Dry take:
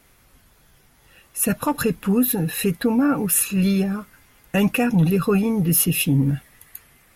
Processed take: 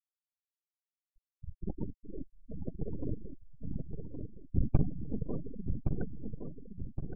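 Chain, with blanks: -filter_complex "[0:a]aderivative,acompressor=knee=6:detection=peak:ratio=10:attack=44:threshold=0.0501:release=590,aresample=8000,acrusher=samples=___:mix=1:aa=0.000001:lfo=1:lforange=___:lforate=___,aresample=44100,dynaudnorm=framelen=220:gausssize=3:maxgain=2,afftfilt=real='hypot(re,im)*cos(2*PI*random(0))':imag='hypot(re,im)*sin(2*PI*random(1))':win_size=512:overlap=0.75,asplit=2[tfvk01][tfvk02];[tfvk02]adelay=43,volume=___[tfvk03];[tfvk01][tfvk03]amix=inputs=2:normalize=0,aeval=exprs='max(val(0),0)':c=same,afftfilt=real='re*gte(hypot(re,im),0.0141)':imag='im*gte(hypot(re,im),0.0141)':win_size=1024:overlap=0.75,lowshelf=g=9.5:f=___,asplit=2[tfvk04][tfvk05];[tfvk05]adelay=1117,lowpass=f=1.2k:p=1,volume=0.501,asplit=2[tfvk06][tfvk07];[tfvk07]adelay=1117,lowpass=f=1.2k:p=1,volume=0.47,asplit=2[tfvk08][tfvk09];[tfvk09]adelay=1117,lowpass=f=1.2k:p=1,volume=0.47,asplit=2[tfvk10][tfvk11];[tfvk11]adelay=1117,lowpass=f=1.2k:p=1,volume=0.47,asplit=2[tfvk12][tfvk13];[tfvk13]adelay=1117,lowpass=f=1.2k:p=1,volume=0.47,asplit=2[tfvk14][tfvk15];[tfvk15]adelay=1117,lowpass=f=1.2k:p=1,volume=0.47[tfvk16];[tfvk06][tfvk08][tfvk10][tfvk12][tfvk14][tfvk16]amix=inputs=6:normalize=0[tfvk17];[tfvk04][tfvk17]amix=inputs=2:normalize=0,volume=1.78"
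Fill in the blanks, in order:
15, 15, 0.3, 0.282, 420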